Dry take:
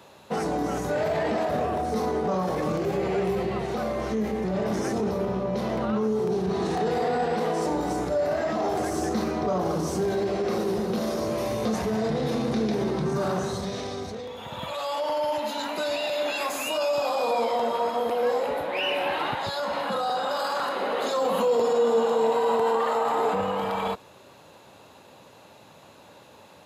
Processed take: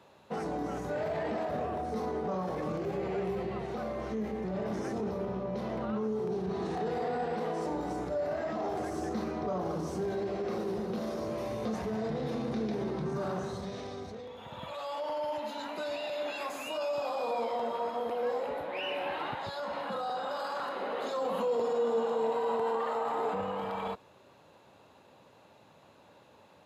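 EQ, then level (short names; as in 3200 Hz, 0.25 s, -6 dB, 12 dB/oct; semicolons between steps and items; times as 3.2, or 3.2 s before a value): high shelf 4600 Hz -8.5 dB; -7.5 dB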